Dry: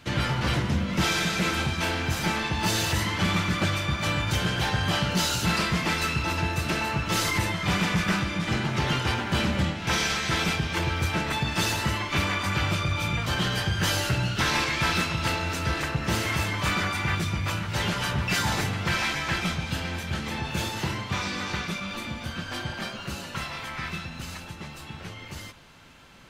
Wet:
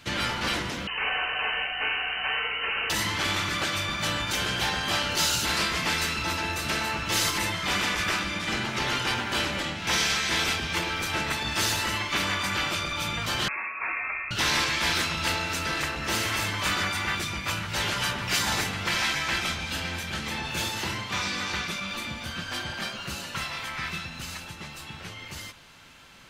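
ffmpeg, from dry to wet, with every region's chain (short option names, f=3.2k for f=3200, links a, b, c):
-filter_complex "[0:a]asettb=1/sr,asplit=3[a][b][c];[a]atrim=end=0.874[d];[b]atrim=start=0.87:end=2.9,asetpts=PTS-STARTPTS,afade=t=in:d=0.004:c=qsin,afade=t=out:st=2.026:d=0.004:c=qsin,lowpass=f=2.6k:t=q:w=0.5098,lowpass=f=2.6k:t=q:w=0.6013,lowpass=f=2.6k:t=q:w=0.9,lowpass=f=2.6k:t=q:w=2.563,afreqshift=-3100,aeval=exprs='val(0)+0.00282*(sin(2*PI*60*n/s)+sin(2*PI*2*60*n/s)/2+sin(2*PI*3*60*n/s)/3+sin(2*PI*4*60*n/s)/4+sin(2*PI*5*60*n/s)/5)':c=same[e];[c]atrim=start=2.896[f];[d][e]acrossfade=d=0.004:c1=hsin:c2=qsin[g];[g][f]acrossfade=d=0.004:c1=qsin:c2=hsin,asettb=1/sr,asplit=3[h][i][j];[h]atrim=end=13.484[k];[i]atrim=start=13.48:end=14.31,asetpts=PTS-STARTPTS,afade=t=in:d=0.004:c=qsin,afade=t=out:st=0.826:d=0.004:c=qsin,highshelf=f=2k:g=-10,lowpass=f=2.3k:t=q:w=0.5098,lowpass=f=2.3k:t=q:w=0.6013,lowpass=f=2.3k:t=q:w=0.9,lowpass=f=2.3k:t=q:w=2.563,afreqshift=-2700[l];[j]atrim=start=14.306[m];[k][l]acrossfade=d=0.004:c1=hsin:c2=qsin[n];[n][m]acrossfade=d=0.004:c1=qsin:c2=hsin,tiltshelf=f=1.1k:g=-3.5,afftfilt=real='re*lt(hypot(re,im),0.251)':imag='im*lt(hypot(re,im),0.251)':win_size=1024:overlap=0.75"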